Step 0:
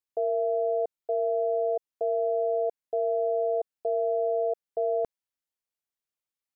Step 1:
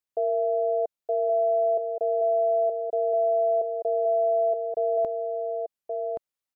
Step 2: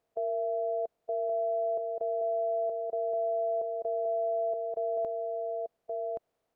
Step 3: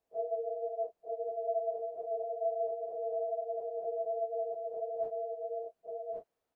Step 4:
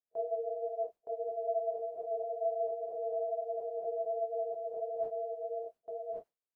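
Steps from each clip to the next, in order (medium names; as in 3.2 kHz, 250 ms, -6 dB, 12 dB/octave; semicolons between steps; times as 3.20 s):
peaking EQ 640 Hz +3 dB 0.42 oct; delay 1124 ms -5 dB
spectral levelling over time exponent 0.6; trim -7.5 dB
phase randomisation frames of 100 ms; trim -4.5 dB
gate with hold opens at -40 dBFS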